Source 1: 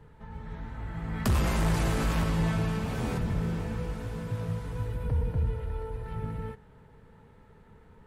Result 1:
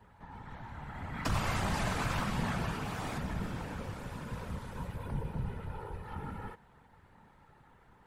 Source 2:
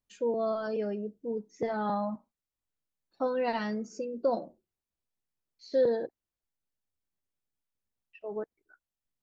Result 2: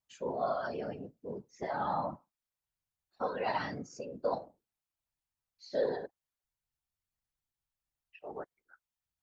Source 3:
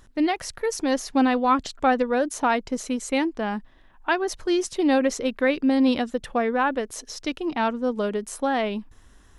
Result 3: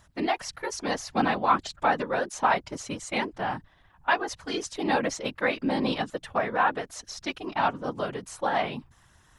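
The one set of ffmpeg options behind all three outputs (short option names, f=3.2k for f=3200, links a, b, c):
-filter_complex "[0:a]acrossover=split=8000[a][b];[b]acompressor=threshold=-52dB:ratio=4:attack=1:release=60[c];[a][c]amix=inputs=2:normalize=0,lowshelf=f=580:t=q:w=1.5:g=-6,afftfilt=real='hypot(re,im)*cos(2*PI*random(0))':imag='hypot(re,im)*sin(2*PI*random(1))':win_size=512:overlap=0.75,volume=4.5dB"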